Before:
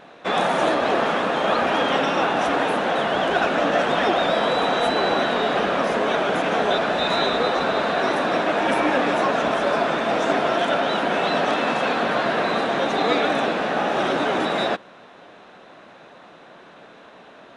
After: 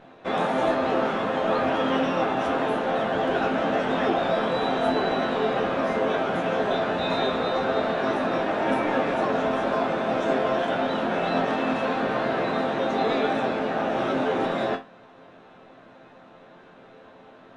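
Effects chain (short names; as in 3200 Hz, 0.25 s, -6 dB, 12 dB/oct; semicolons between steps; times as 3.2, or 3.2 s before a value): tilt -2 dB/oct; resonator bank F2 major, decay 0.26 s; gain +6.5 dB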